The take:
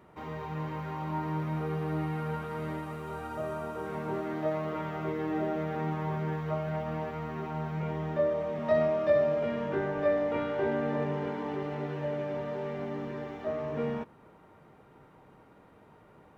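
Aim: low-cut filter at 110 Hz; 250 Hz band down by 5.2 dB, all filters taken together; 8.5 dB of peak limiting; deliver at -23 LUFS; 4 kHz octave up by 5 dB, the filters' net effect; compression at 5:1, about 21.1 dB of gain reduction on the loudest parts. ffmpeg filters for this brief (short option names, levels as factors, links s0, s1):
-af "highpass=110,equalizer=f=250:t=o:g=-7.5,equalizer=f=4000:t=o:g=7,acompressor=threshold=0.00501:ratio=5,volume=26.6,alimiter=limit=0.188:level=0:latency=1"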